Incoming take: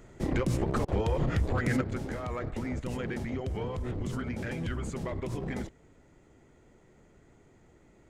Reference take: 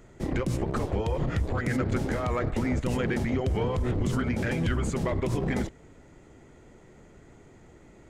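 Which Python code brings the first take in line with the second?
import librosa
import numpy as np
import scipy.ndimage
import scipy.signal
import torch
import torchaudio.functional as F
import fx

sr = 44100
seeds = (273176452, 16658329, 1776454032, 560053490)

y = fx.fix_declip(x, sr, threshold_db=-20.5)
y = fx.fix_interpolate(y, sr, at_s=(0.85,), length_ms=30.0)
y = fx.gain(y, sr, db=fx.steps((0.0, 0.0), (1.81, 7.0)))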